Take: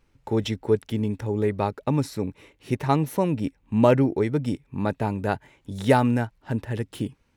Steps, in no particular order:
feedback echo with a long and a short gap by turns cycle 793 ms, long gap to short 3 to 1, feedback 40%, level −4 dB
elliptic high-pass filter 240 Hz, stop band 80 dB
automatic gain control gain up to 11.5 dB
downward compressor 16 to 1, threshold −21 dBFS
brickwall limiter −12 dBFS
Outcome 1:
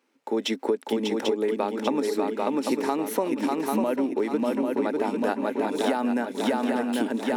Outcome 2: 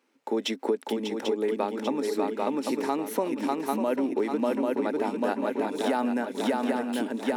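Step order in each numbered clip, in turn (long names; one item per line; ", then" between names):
elliptic high-pass filter, then brickwall limiter, then feedback echo with a long and a short gap by turns, then automatic gain control, then downward compressor
feedback echo with a long and a short gap by turns, then brickwall limiter, then automatic gain control, then downward compressor, then elliptic high-pass filter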